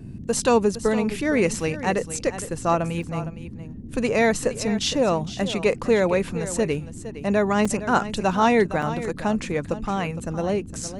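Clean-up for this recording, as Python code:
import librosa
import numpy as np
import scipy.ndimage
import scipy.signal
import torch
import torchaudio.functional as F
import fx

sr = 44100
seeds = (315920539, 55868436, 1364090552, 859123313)

y = fx.fix_interpolate(x, sr, at_s=(3.03, 7.65, 8.82), length_ms=4.2)
y = fx.noise_reduce(y, sr, print_start_s=3.44, print_end_s=3.94, reduce_db=30.0)
y = fx.fix_echo_inverse(y, sr, delay_ms=462, level_db=-13.0)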